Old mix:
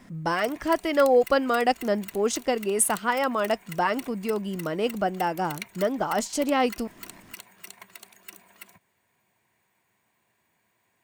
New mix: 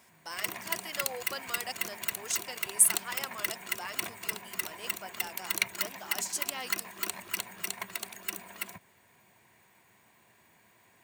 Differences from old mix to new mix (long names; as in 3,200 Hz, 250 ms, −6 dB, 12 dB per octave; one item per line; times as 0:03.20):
speech: add first difference
background +8.5 dB